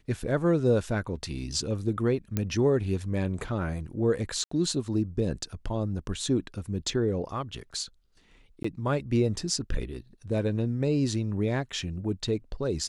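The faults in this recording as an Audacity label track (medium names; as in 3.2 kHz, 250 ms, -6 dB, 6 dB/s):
2.370000	2.370000	pop -13 dBFS
4.440000	4.510000	dropout 74 ms
8.630000	8.640000	dropout 14 ms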